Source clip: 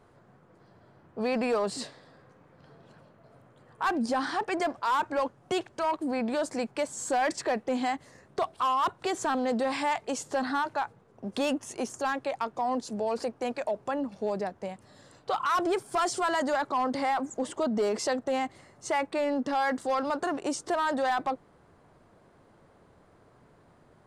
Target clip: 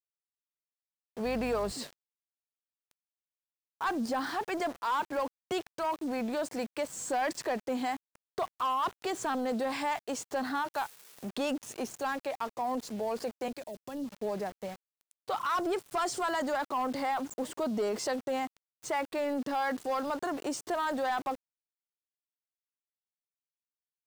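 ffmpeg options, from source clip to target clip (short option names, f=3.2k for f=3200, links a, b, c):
-filter_complex "[0:a]aeval=exprs='val(0)+0.5*0.0106*sgn(val(0))':c=same,asettb=1/sr,asplit=3[a][b][c];[a]atrim=end=1.254[d];[b]atrim=start=1.25:end=1.72,asetpts=PTS-STARTPTS,afade=t=in:d=0.004:c=qsin,afade=t=out:st=0.466:d=0.004:c=qsin,aeval=exprs='val(0)+0.01*(sin(2*PI*50*n/s)+sin(2*PI*2*50*n/s)/2+sin(2*PI*3*50*n/s)/3+sin(2*PI*4*50*n/s)/4+sin(2*PI*5*50*n/s)/5)':c=same[e];[c]atrim=start=1.716[f];[d][e]acrossfade=d=0.004:c1=hsin:c2=qsin[g];[g][f]acrossfade=d=0.004:c1=qsin:c2=hsin,asplit=3[h][i][j];[h]afade=t=out:st=10.73:d=0.02[k];[i]highshelf=f=4.4k:g=10,afade=t=in:st=10.73:d=0.02,afade=t=out:st=11.28:d=0.02[l];[j]afade=t=in:st=11.28:d=0.02[m];[k][l][m]amix=inputs=3:normalize=0,aeval=exprs='val(0)*gte(abs(val(0)),0.0126)':c=same,asettb=1/sr,asplit=3[n][o][p];[n]atrim=end=13.484[q];[o]atrim=start=13.48:end=14.12,asetpts=PTS-STARTPTS,afade=t=in:d=0.004:c=qsin,afade=t=out:st=0.636:d=0.004:c=qsin,acrossover=split=420|3000[r][s][t];[s]acompressor=threshold=-47dB:ratio=3[u];[r][u][t]amix=inputs=3:normalize=0[v];[p]atrim=start=14.116[w];[q][v]acrossfade=d=0.004:c1=hsin:c2=qsin[x];[x][w]acrossfade=d=0.004:c1=qsin:c2=hsin,volume=-4.5dB"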